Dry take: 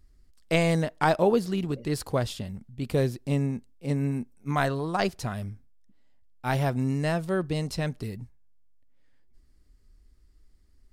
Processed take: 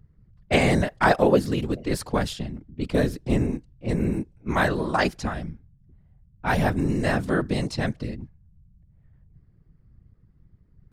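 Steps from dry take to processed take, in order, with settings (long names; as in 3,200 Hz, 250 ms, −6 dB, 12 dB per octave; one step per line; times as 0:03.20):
low-pass that shuts in the quiet parts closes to 1,400 Hz, open at −24 dBFS
dynamic equaliser 1,700 Hz, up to +5 dB, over −47 dBFS, Q 2.6
random phases in short frames
level +3 dB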